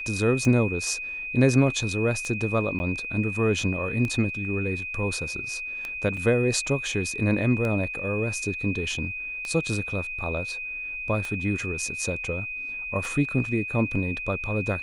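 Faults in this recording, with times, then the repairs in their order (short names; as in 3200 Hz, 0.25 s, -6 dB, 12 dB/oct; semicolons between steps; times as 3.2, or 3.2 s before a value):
tick 33 1/3 rpm -17 dBFS
tone 2500 Hz -31 dBFS
2.79–2.8 gap 10 ms
6.17 gap 3.5 ms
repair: de-click; notch 2500 Hz, Q 30; interpolate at 2.79, 10 ms; interpolate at 6.17, 3.5 ms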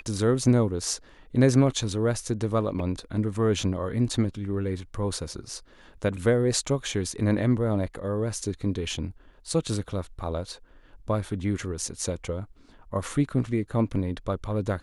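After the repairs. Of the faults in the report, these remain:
none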